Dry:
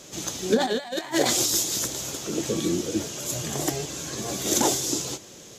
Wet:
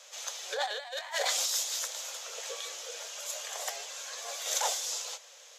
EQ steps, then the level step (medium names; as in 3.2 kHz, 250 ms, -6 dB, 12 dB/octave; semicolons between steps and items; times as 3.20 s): steep high-pass 480 Hz 72 dB/octave; tilt shelf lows -6 dB, about 710 Hz; treble shelf 5.9 kHz -10.5 dB; -7.0 dB